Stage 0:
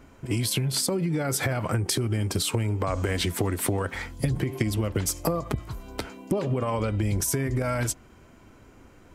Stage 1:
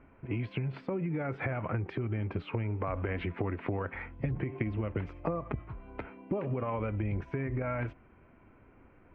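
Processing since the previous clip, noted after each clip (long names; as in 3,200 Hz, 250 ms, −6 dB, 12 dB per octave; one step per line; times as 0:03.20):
Chebyshev low-pass filter 2,500 Hz, order 4
level −6 dB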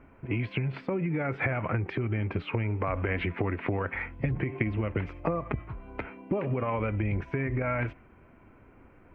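dynamic equaliser 2,200 Hz, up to +5 dB, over −56 dBFS, Q 1.4
level +3.5 dB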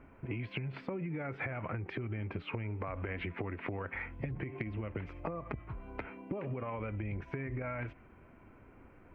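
downward compressor 4 to 1, threshold −34 dBFS, peak gain reduction 10.5 dB
level −2 dB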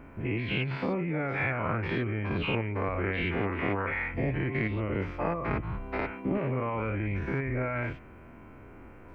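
every bin's largest magnitude spread in time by 120 ms
level +3.5 dB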